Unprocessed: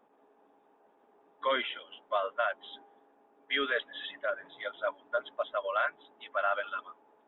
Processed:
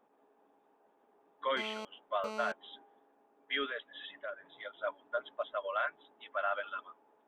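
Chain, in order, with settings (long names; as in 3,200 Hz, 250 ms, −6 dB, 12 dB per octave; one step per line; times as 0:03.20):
0:01.57–0:02.52: phone interference −38 dBFS
0:03.66–0:04.81: downward compressor 1.5 to 1, threshold −43 dBFS, peak gain reduction 6.5 dB
level −4 dB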